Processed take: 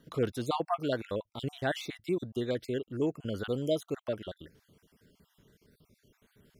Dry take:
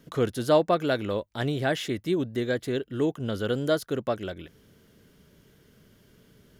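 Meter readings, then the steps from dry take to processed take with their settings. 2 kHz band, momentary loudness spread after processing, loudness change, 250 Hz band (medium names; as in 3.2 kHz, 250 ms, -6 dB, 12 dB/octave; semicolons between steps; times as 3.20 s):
-7.5 dB, 6 LU, -6.5 dB, -6.0 dB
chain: random holes in the spectrogram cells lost 42%; trim -4.5 dB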